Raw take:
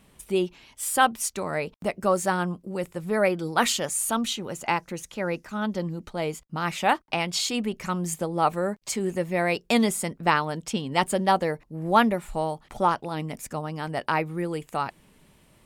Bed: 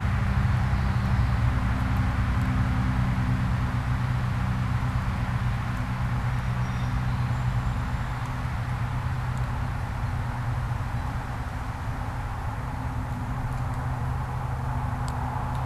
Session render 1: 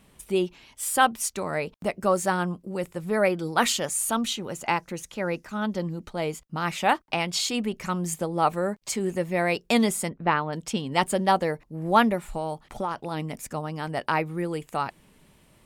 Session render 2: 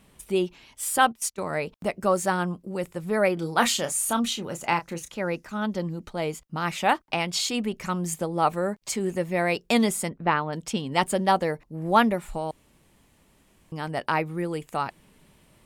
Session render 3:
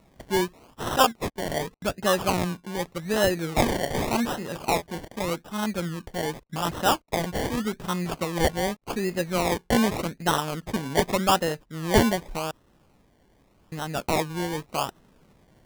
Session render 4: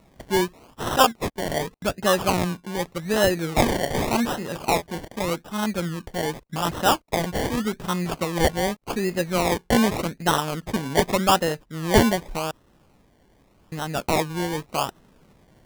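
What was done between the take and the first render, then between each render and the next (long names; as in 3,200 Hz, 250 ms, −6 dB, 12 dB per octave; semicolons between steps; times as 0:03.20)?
0:10.09–0:10.53: high-frequency loss of the air 330 metres; 0:12.23–0:12.98: downward compressor, threshold −24 dBFS
0:00.98–0:01.50: noise gate −32 dBFS, range −17 dB; 0:03.34–0:05.12: double-tracking delay 30 ms −9 dB; 0:12.51–0:13.72: fill with room tone
sample-and-hold swept by an LFO 27×, swing 60% 0.85 Hz
level +2.5 dB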